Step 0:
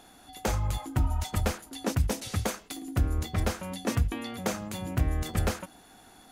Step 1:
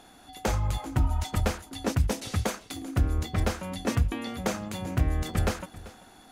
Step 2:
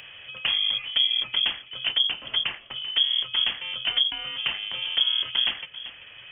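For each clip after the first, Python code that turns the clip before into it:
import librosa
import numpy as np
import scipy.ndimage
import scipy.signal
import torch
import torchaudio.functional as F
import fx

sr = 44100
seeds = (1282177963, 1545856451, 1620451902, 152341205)

y1 = fx.high_shelf(x, sr, hz=9200.0, db=-6.0)
y1 = y1 + 10.0 ** (-18.5 / 20.0) * np.pad(y1, (int(389 * sr / 1000.0), 0))[:len(y1)]
y1 = y1 * librosa.db_to_amplitude(1.5)
y2 = fx.freq_invert(y1, sr, carrier_hz=3300)
y2 = fx.band_squash(y2, sr, depth_pct=40)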